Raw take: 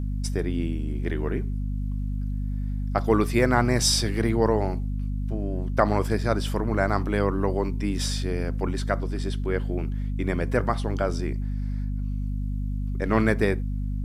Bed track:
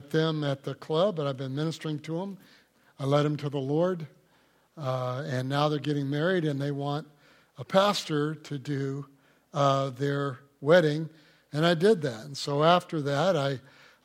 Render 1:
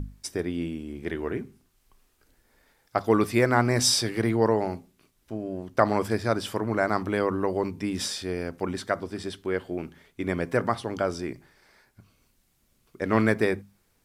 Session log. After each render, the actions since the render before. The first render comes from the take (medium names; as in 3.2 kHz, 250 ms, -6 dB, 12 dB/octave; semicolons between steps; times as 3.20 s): hum notches 50/100/150/200/250 Hz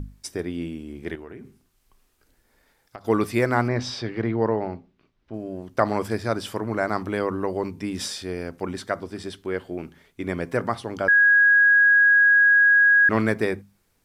1.15–3.05 s: compression, threshold -36 dBFS; 3.68–5.34 s: distance through air 230 m; 11.08–13.09 s: bleep 1.65 kHz -12.5 dBFS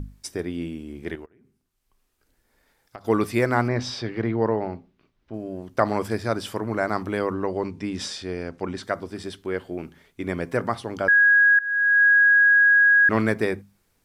1.26–3.04 s: fade in, from -23 dB; 7.33–8.83 s: low-pass 6.9 kHz; 11.59–12.03 s: fade in, from -20.5 dB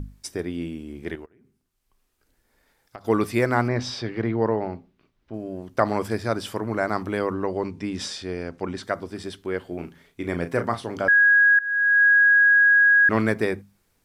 9.67–11.08 s: doubling 35 ms -9 dB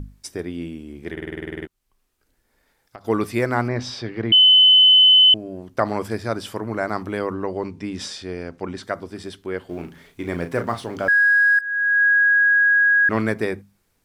1.12 s: stutter in place 0.05 s, 11 plays; 4.32–5.34 s: bleep 3.03 kHz -8.5 dBFS; 9.69–11.61 s: companding laws mixed up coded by mu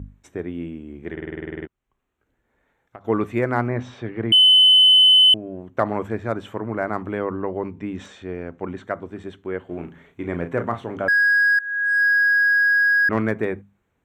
local Wiener filter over 9 samples; high-pass 44 Hz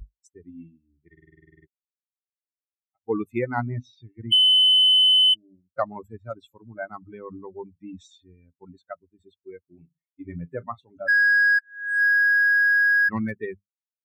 expander on every frequency bin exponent 3; compression, threshold -15 dBFS, peak gain reduction 4 dB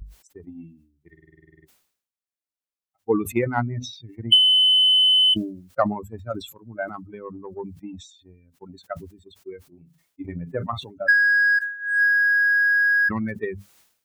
transient shaper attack +5 dB, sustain -1 dB; decay stretcher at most 92 dB/s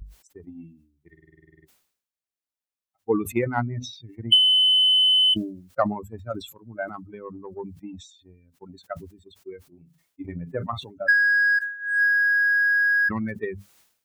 trim -1.5 dB